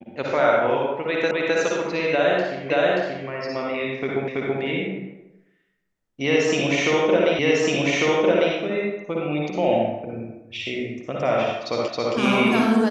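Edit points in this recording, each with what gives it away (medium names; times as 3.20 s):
1.31 s: repeat of the last 0.26 s
2.70 s: repeat of the last 0.58 s
4.28 s: repeat of the last 0.33 s
7.39 s: repeat of the last 1.15 s
11.88 s: repeat of the last 0.27 s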